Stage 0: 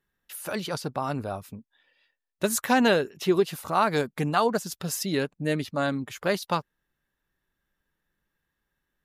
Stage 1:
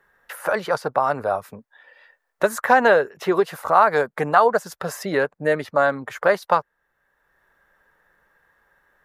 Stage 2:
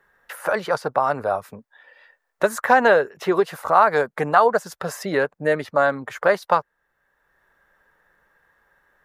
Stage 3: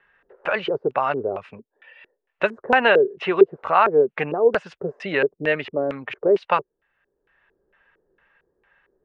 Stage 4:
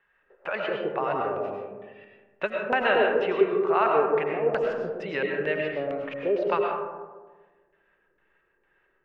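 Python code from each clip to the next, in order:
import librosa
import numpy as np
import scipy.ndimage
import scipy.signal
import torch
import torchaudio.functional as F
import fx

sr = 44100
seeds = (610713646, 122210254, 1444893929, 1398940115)

y1 = fx.band_shelf(x, sr, hz=930.0, db=14.0, octaves=2.5)
y1 = fx.band_squash(y1, sr, depth_pct=40)
y1 = y1 * 10.0 ** (-4.0 / 20.0)
y2 = fx.peak_eq(y1, sr, hz=12000.0, db=-3.0, octaves=0.26)
y3 = scipy.signal.sosfilt(scipy.signal.ellip(4, 1.0, 40, 9800.0, 'lowpass', fs=sr, output='sos'), y2)
y3 = fx.filter_lfo_lowpass(y3, sr, shape='square', hz=2.2, low_hz=390.0, high_hz=2700.0, q=5.7)
y3 = y3 * 10.0 ** (-2.0 / 20.0)
y4 = fx.rev_freeverb(y3, sr, rt60_s=1.4, hf_ratio=0.3, predelay_ms=65, drr_db=0.0)
y4 = y4 * 10.0 ** (-8.0 / 20.0)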